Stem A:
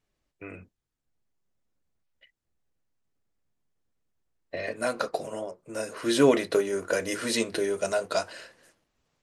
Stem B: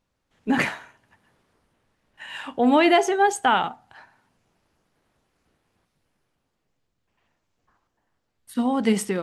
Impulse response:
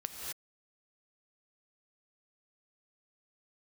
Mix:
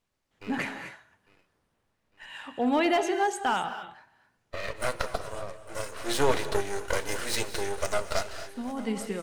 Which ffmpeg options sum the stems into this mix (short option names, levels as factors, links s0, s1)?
-filter_complex "[0:a]highpass=420,aeval=exprs='max(val(0),0)':c=same,volume=1.06,asplit=4[s0][s1][s2][s3];[s1]volume=0.447[s4];[s2]volume=0.158[s5];[1:a]asoftclip=type=hard:threshold=0.266,volume=0.299,asplit=2[s6][s7];[s7]volume=0.631[s8];[s3]apad=whole_len=406997[s9];[s6][s9]sidechaincompress=threshold=0.00631:ratio=8:attack=34:release=857[s10];[2:a]atrim=start_sample=2205[s11];[s4][s8]amix=inputs=2:normalize=0[s12];[s12][s11]afir=irnorm=-1:irlink=0[s13];[s5]aecho=0:1:853|1706|2559|3412|4265|5118:1|0.45|0.202|0.0911|0.041|0.0185[s14];[s0][s10][s13][s14]amix=inputs=4:normalize=0"